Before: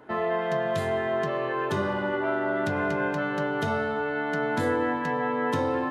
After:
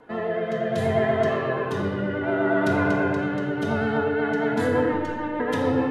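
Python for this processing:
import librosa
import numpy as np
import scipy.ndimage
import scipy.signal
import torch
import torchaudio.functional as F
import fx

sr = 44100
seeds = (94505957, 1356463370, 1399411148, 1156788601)

y = fx.vibrato(x, sr, rate_hz=8.4, depth_cents=47.0)
y = fx.robotise(y, sr, hz=302.0, at=(4.88, 5.4))
y = fx.rotary_switch(y, sr, hz=0.65, then_hz=6.7, switch_at_s=3.68)
y = fx.room_shoebox(y, sr, seeds[0], volume_m3=1300.0, walls='mixed', distance_m=1.8)
y = y * 10.0 ** (1.5 / 20.0)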